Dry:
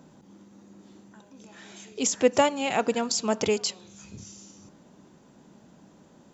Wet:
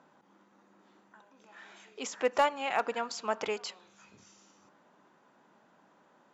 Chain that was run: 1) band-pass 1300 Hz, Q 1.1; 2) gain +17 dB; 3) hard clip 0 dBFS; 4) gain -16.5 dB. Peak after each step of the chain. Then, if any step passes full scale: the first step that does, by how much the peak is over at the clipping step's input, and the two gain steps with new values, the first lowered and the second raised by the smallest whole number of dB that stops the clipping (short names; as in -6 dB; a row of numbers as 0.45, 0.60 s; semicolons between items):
-13.5, +3.5, 0.0, -16.5 dBFS; step 2, 3.5 dB; step 2 +13 dB, step 4 -12.5 dB